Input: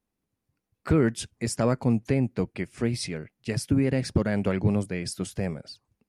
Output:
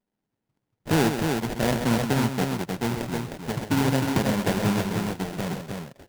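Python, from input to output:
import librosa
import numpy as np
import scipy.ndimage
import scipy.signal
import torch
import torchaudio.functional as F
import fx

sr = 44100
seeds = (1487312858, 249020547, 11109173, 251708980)

p1 = scipy.signal.sosfilt(scipy.signal.butter(4, 110.0, 'highpass', fs=sr, output='sos'), x)
p2 = fx.sample_hold(p1, sr, seeds[0], rate_hz=1200.0, jitter_pct=20)
y = p2 + fx.echo_multitap(p2, sr, ms=(130, 309), db=(-8.0, -4.5), dry=0)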